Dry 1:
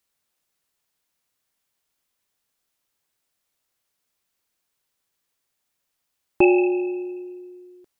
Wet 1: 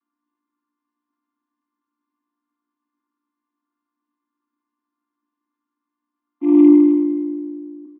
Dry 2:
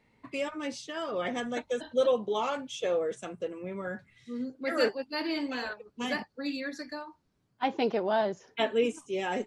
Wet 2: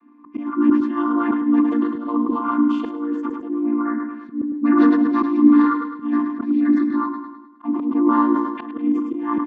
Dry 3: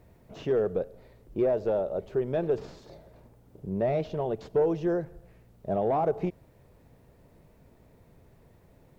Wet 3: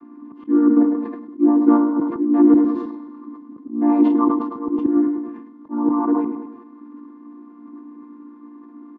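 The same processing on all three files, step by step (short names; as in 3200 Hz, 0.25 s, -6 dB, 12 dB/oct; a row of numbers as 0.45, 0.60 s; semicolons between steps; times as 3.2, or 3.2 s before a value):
chord vocoder major triad, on A#3; double band-pass 560 Hz, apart 2 oct; auto swell 0.292 s; feedback echo 0.105 s, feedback 52%, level -10.5 dB; sustainer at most 56 dB/s; normalise peaks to -2 dBFS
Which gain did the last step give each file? +20.5, +24.0, +26.5 dB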